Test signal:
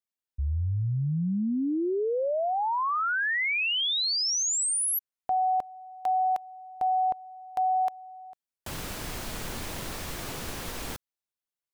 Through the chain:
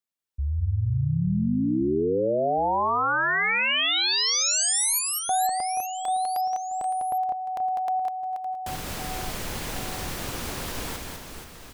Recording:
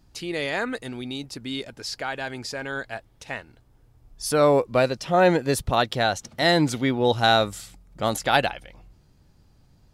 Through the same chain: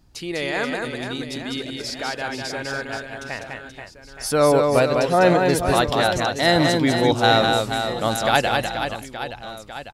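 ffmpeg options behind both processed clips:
-af "aecho=1:1:200|480|872|1421|2189:0.631|0.398|0.251|0.158|0.1,volume=1.5dB"

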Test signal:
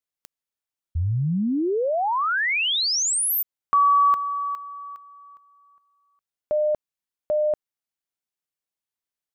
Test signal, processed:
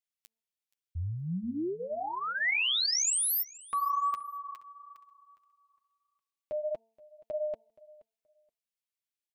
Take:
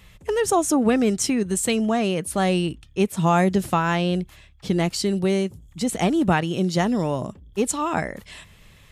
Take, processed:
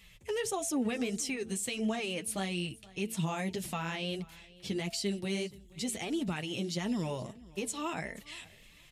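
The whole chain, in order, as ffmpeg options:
-filter_complex "[0:a]highshelf=f=1.8k:t=q:w=1.5:g=6.5,bandreject=f=224.1:t=h:w=4,bandreject=f=448.2:t=h:w=4,bandreject=f=672.3:t=h:w=4,bandreject=f=896.4:t=h:w=4,alimiter=limit=-14.5dB:level=0:latency=1:release=71,flanger=delay=4.4:depth=5.2:regen=-14:speed=1.6:shape=sinusoidal,asplit=2[a][b];[b]aecho=0:1:475|950:0.0794|0.0151[c];[a][c]amix=inputs=2:normalize=0,volume=-7.5dB"

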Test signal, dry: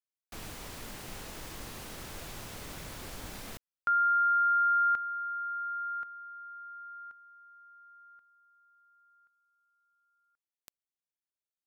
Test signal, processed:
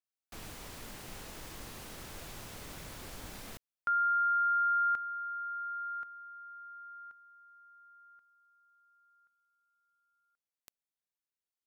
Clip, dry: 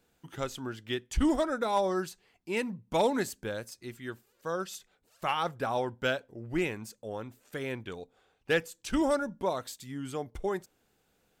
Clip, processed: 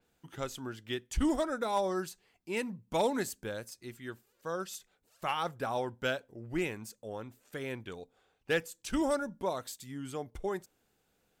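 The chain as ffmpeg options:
-af "adynamicequalizer=threshold=0.00447:dfrequency=5900:dqfactor=0.7:tfrequency=5900:tqfactor=0.7:attack=5:release=100:ratio=0.375:range=2:mode=boostabove:tftype=highshelf,volume=-3dB"

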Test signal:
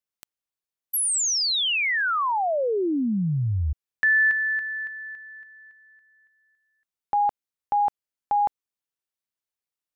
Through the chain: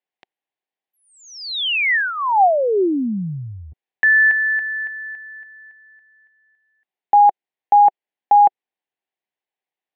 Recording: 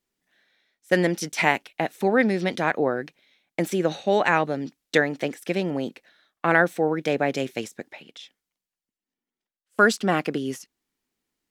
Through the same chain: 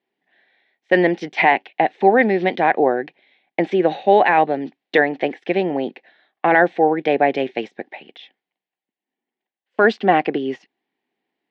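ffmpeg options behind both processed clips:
-af "apsyclip=9.5dB,highpass=210,equalizer=f=380:t=q:w=4:g=4,equalizer=f=770:t=q:w=4:g=9,equalizer=f=1.3k:t=q:w=4:g=-9,equalizer=f=1.9k:t=q:w=4:g=4,lowpass=f=3.4k:w=0.5412,lowpass=f=3.4k:w=1.3066,volume=-5dB"

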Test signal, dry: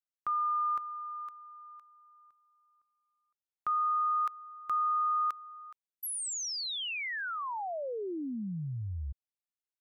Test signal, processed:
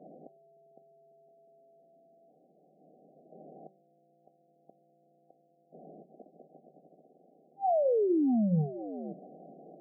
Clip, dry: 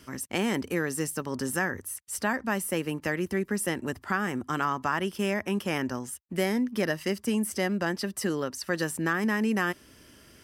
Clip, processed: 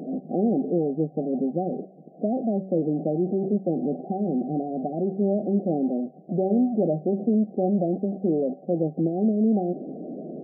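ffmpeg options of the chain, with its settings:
-af "aeval=exprs='val(0)+0.5*0.0398*sgn(val(0))':c=same,bandreject=f=190.7:t=h:w=4,bandreject=f=381.4:t=h:w=4,bandreject=f=572.1:t=h:w=4,bandreject=f=762.8:t=h:w=4,bandreject=f=953.5:t=h:w=4,bandreject=f=1.1442k:t=h:w=4,bandreject=f=1.3349k:t=h:w=4,bandreject=f=1.5256k:t=h:w=4,bandreject=f=1.7163k:t=h:w=4,bandreject=f=1.907k:t=h:w=4,bandreject=f=2.0977k:t=h:w=4,bandreject=f=2.2884k:t=h:w=4,bandreject=f=2.4791k:t=h:w=4,bandreject=f=2.6698k:t=h:w=4,bandreject=f=2.8605k:t=h:w=4,bandreject=f=3.0512k:t=h:w=4,bandreject=f=3.2419k:t=h:w=4,bandreject=f=3.4326k:t=h:w=4,bandreject=f=3.6233k:t=h:w=4,bandreject=f=3.814k:t=h:w=4,bandreject=f=4.0047k:t=h:w=4,bandreject=f=4.1954k:t=h:w=4,bandreject=f=4.3861k:t=h:w=4,bandreject=f=4.5768k:t=h:w=4,bandreject=f=4.7675k:t=h:w=4,bandreject=f=4.9582k:t=h:w=4,bandreject=f=5.1489k:t=h:w=4,afftfilt=real='re*between(b*sr/4096,140,790)':imag='im*between(b*sr/4096,140,790)':win_size=4096:overlap=0.75,volume=3.5dB"

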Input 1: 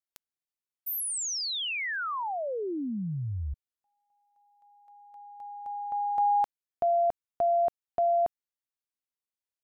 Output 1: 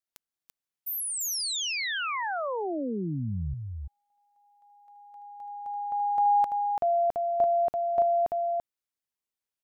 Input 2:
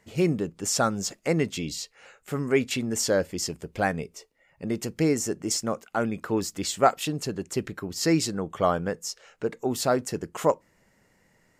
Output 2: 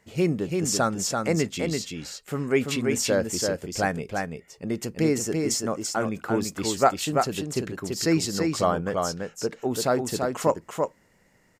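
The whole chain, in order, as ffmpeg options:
-af "aecho=1:1:337:0.631"

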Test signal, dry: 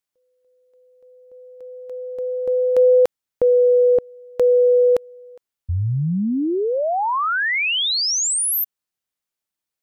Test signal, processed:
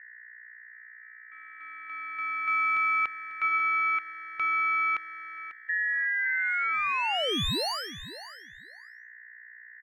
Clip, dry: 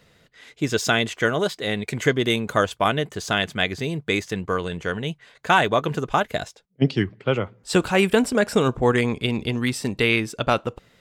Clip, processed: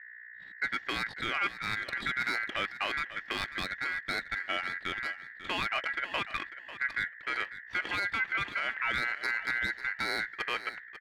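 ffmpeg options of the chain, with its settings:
-filter_complex "[0:a]agate=range=-10dB:threshold=-46dB:ratio=16:release=84:detection=rms,lowpass=f=2.7k:w=0.5412,lowpass=f=2.7k:w=1.3066,alimiter=limit=-15.5dB:level=0:latency=1:release=11,aeval=exprs='val(0)+0.01*(sin(2*PI*60*n/s)+sin(2*PI*2*60*n/s)/2+sin(2*PI*3*60*n/s)/3+sin(2*PI*4*60*n/s)/4+sin(2*PI*5*60*n/s)/5)':c=same,adynamicsmooth=sensitivity=5.5:basefreq=1.2k,aeval=exprs='val(0)*sin(2*PI*1800*n/s)':c=same,asplit=2[a][b];[b]aecho=0:1:545|1090:0.2|0.0299[c];[a][c]amix=inputs=2:normalize=0,volume=-4.5dB"

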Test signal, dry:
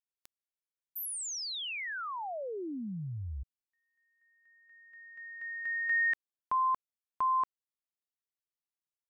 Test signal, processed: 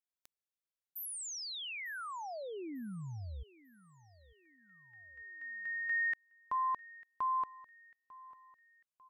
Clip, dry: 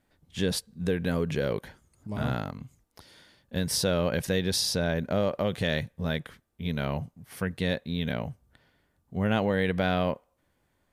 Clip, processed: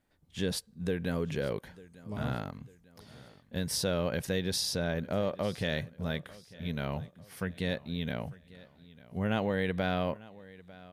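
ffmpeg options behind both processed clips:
-af "aecho=1:1:897|1794|2691:0.0944|0.0406|0.0175,volume=-4.5dB"

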